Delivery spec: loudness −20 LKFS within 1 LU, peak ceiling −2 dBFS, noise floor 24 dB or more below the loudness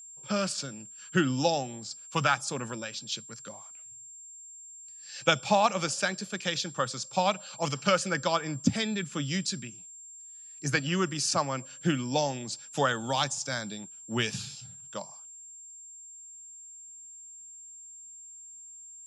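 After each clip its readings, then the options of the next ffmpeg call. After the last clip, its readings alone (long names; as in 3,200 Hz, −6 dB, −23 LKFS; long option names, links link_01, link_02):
interfering tone 7,400 Hz; level of the tone −45 dBFS; integrated loudness −30.0 LKFS; sample peak −9.5 dBFS; target loudness −20.0 LKFS
→ -af "bandreject=frequency=7400:width=30"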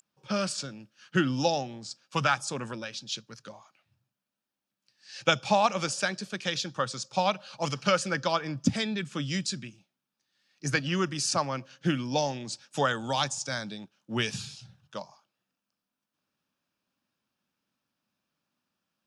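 interfering tone none found; integrated loudness −29.5 LKFS; sample peak −9.5 dBFS; target loudness −20.0 LKFS
→ -af "volume=9.5dB,alimiter=limit=-2dB:level=0:latency=1"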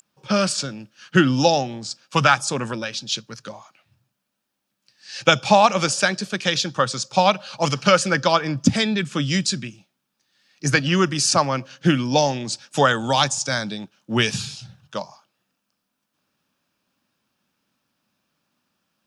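integrated loudness −20.5 LKFS; sample peak −2.0 dBFS; background noise floor −78 dBFS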